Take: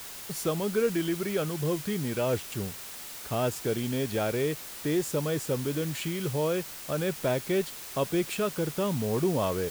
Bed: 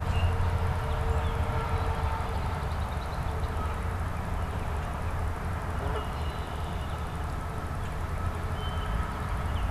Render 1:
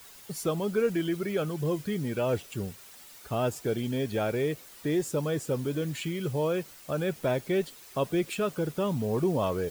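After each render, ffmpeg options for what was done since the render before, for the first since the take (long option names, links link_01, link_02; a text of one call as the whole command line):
ffmpeg -i in.wav -af "afftdn=noise_reduction=10:noise_floor=-42" out.wav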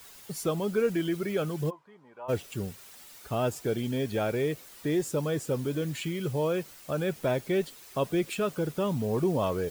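ffmpeg -i in.wav -filter_complex "[0:a]asplit=3[link_01][link_02][link_03];[link_01]afade=type=out:start_time=1.69:duration=0.02[link_04];[link_02]bandpass=frequency=960:width_type=q:width=5.4,afade=type=in:start_time=1.69:duration=0.02,afade=type=out:start_time=2.28:duration=0.02[link_05];[link_03]afade=type=in:start_time=2.28:duration=0.02[link_06];[link_04][link_05][link_06]amix=inputs=3:normalize=0" out.wav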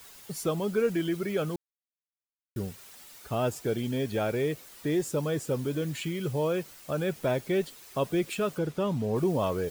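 ffmpeg -i in.wav -filter_complex "[0:a]asettb=1/sr,asplit=3[link_01][link_02][link_03];[link_01]atrim=end=8.584[link_04];[link_02]atrim=start=8.58:end=9.16,asetpts=PTS-STARTPTS,afade=type=in:duration=0.004:curve=qsin,afade=type=out:start_time=0.576:duration=0.004:curve=qsin,highshelf=frequency=8500:gain=-10[link_05];[link_03]atrim=start=9.156[link_06];[link_04][link_05]acrossfade=duration=0.004:curve1=hsin:curve2=qsin[link_07];[link_07][link_06]acrossfade=duration=0.004:curve1=qsin:curve2=hsin,asplit=3[link_08][link_09][link_10];[link_08]atrim=end=1.56,asetpts=PTS-STARTPTS,afade=type=out:start_time=1.556:duration=0.004:curve=hsin[link_11];[link_09]atrim=start=1.56:end=2.56,asetpts=PTS-STARTPTS,volume=0[link_12];[link_10]atrim=start=2.56,asetpts=PTS-STARTPTS,afade=type=in:duration=0.004:curve=hsin[link_13];[link_11][link_12][link_13]concat=n=3:v=0:a=1" out.wav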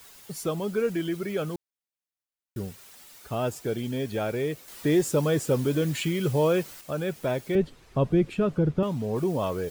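ffmpeg -i in.wav -filter_complex "[0:a]asettb=1/sr,asplit=3[link_01][link_02][link_03];[link_01]atrim=end=7.554[link_04];[link_02]atrim=start=7.55:end=8.83,asetpts=PTS-STARTPTS,afade=type=in:duration=0.004:curve=qsin,afade=type=out:start_time=1.276:duration=0.004:curve=qsin,aemphasis=mode=reproduction:type=riaa[link_05];[link_03]atrim=start=8.826[link_06];[link_04][link_05]acrossfade=duration=0.004:curve1=hsin:curve2=qsin[link_07];[link_07][link_06]acrossfade=duration=0.004:curve1=qsin:curve2=hsin,asplit=3[link_08][link_09][link_10];[link_08]atrim=end=4.682[link_11];[link_09]atrim=start=4.678:end=6.812,asetpts=PTS-STARTPTS,volume=5.5dB[link_12];[link_10]atrim=start=6.808[link_13];[link_11][link_12]acrossfade=duration=0.004:curve1=hsin:curve2=hsin[link_14];[link_14][link_13]acrossfade=duration=0.004:curve1=hsin:curve2=hsin" out.wav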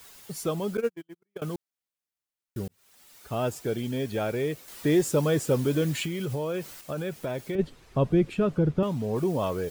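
ffmpeg -i in.wav -filter_complex "[0:a]asettb=1/sr,asplit=3[link_01][link_02][link_03];[link_01]atrim=end=0.774[link_04];[link_02]atrim=start=0.77:end=1.42,asetpts=PTS-STARTPTS,afade=type=in:duration=0.004:curve=qsin,afade=type=out:start_time=0.646:duration=0.004:curve=qsin,agate=range=-52dB:threshold=-25dB:ratio=16:release=100:detection=peak[link_05];[link_03]atrim=start=1.416[link_06];[link_04][link_05]acrossfade=duration=0.004:curve1=hsin:curve2=qsin[link_07];[link_07][link_06]acrossfade=duration=0.004:curve1=qsin:curve2=hsin,asplit=3[link_08][link_09][link_10];[link_08]afade=type=out:start_time=6.04:duration=0.02[link_11];[link_09]acompressor=threshold=-27dB:ratio=6:attack=3.2:release=140:knee=1:detection=peak,afade=type=in:start_time=6.04:duration=0.02,afade=type=out:start_time=7.58:duration=0.02[link_12];[link_10]afade=type=in:start_time=7.58:duration=0.02[link_13];[link_11][link_12][link_13]amix=inputs=3:normalize=0,asplit=2[link_14][link_15];[link_14]atrim=end=2.68,asetpts=PTS-STARTPTS,afade=type=out:start_time=2.676:duration=0.004:curve=hsin[link_16];[link_15]atrim=start=2.68,asetpts=PTS-STARTPTS,afade=type=in:duration=0.7[link_17];[link_16][link_17]concat=n=2:v=0:a=1" out.wav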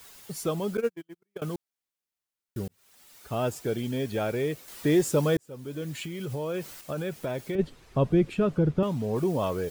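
ffmpeg -i in.wav -filter_complex "[0:a]asplit=2[link_01][link_02];[link_01]atrim=end=5.37,asetpts=PTS-STARTPTS,afade=type=out:start_time=5.366:duration=0.004:curve=hsin[link_03];[link_02]atrim=start=5.37,asetpts=PTS-STARTPTS,afade=type=in:duration=1.28[link_04];[link_03][link_04]concat=n=2:v=0:a=1" out.wav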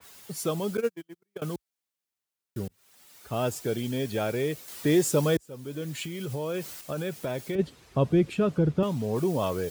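ffmpeg -i in.wav -af "highpass=frequency=51:width=0.5412,highpass=frequency=51:width=1.3066,adynamicequalizer=threshold=0.00562:dfrequency=3000:dqfactor=0.7:tfrequency=3000:tqfactor=0.7:attack=5:release=100:ratio=0.375:range=2:mode=boostabove:tftype=highshelf" out.wav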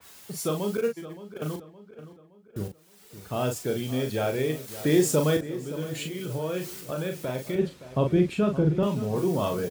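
ffmpeg -i in.wav -filter_complex "[0:a]asplit=2[link_01][link_02];[link_02]adelay=39,volume=-5.5dB[link_03];[link_01][link_03]amix=inputs=2:normalize=0,asplit=2[link_04][link_05];[link_05]adelay=568,lowpass=frequency=3200:poles=1,volume=-14dB,asplit=2[link_06][link_07];[link_07]adelay=568,lowpass=frequency=3200:poles=1,volume=0.47,asplit=2[link_08][link_09];[link_09]adelay=568,lowpass=frequency=3200:poles=1,volume=0.47,asplit=2[link_10][link_11];[link_11]adelay=568,lowpass=frequency=3200:poles=1,volume=0.47[link_12];[link_04][link_06][link_08][link_10][link_12]amix=inputs=5:normalize=0" out.wav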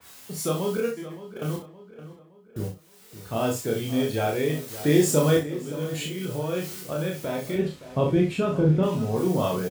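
ffmpeg -i in.wav -filter_complex "[0:a]asplit=2[link_01][link_02];[link_02]adelay=31,volume=-13.5dB[link_03];[link_01][link_03]amix=inputs=2:normalize=0,aecho=1:1:27|59:0.708|0.299" out.wav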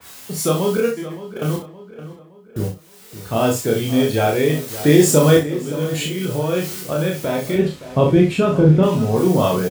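ffmpeg -i in.wav -af "volume=8dB,alimiter=limit=-1dB:level=0:latency=1" out.wav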